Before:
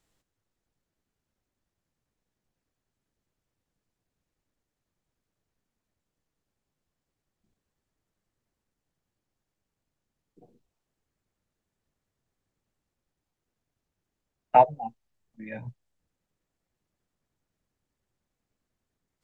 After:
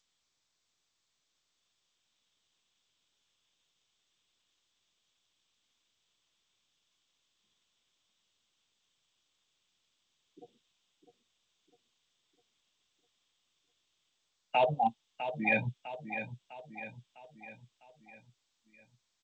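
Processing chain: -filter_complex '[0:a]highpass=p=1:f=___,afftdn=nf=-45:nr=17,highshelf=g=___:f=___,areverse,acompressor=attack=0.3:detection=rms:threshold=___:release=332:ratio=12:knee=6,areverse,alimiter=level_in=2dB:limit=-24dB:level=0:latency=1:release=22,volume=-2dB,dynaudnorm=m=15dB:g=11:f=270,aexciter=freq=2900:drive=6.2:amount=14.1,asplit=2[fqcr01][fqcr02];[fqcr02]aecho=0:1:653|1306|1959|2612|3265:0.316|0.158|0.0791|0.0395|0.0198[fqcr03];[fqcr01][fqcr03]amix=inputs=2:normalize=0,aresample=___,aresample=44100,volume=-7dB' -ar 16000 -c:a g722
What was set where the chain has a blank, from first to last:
160, 9, 2300, -25dB, 8000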